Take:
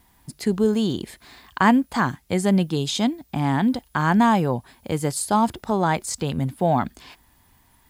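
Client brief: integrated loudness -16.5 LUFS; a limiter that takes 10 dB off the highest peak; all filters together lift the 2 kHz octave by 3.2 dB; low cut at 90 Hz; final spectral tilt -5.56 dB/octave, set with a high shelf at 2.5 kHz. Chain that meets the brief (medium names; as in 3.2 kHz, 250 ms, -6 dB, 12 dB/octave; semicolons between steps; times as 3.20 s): high-pass 90 Hz; peaking EQ 2 kHz +7 dB; treble shelf 2.5 kHz -7 dB; trim +8.5 dB; peak limiter -5 dBFS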